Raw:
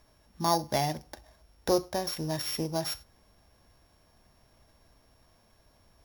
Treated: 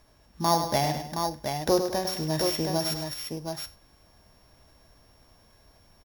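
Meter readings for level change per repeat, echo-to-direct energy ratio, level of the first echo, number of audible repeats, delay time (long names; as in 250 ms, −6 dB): repeats not evenly spaced, −3.5 dB, −8.0 dB, 3, 102 ms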